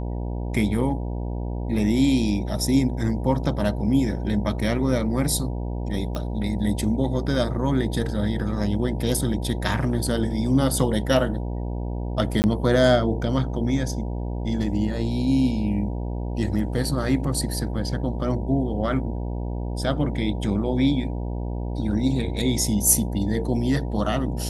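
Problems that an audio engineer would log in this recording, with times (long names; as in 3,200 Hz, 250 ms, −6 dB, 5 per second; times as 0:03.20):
mains buzz 60 Hz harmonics 16 −28 dBFS
0:06.15: click −17 dBFS
0:12.42–0:12.44: drop-out 19 ms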